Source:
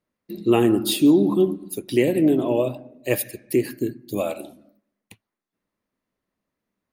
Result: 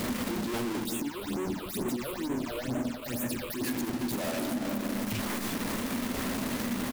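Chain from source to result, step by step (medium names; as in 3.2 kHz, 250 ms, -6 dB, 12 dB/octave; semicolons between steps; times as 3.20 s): one-bit comparator; peaking EQ 240 Hz +12 dB 0.24 oct; delay 343 ms -10.5 dB; peak limiter -16.5 dBFS, peak gain reduction 6 dB; de-hum 76.13 Hz, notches 30; transient shaper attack 0 dB, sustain -12 dB; 0.85–3.64 s: phase shifter stages 8, 2.2 Hz, lowest notch 220–4800 Hz; trim -9 dB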